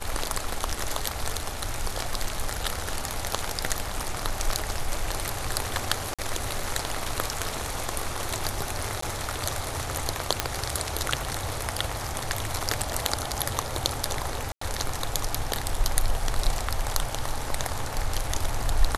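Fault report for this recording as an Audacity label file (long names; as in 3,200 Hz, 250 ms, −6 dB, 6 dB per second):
6.140000	6.190000	drop-out 46 ms
9.010000	9.020000	drop-out 14 ms
10.400000	10.400000	click −4 dBFS
14.520000	14.610000	drop-out 94 ms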